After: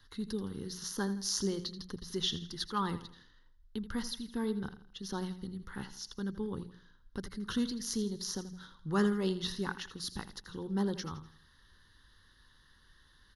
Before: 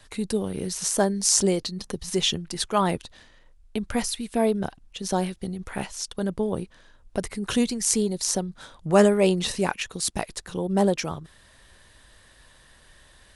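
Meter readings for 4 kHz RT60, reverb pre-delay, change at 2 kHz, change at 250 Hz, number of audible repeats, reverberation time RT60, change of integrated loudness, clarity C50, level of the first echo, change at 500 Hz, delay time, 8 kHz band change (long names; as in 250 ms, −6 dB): no reverb audible, no reverb audible, −10.0 dB, −9.0 dB, 3, no reverb audible, −11.5 dB, no reverb audible, −13.5 dB, −14.5 dB, 82 ms, −15.5 dB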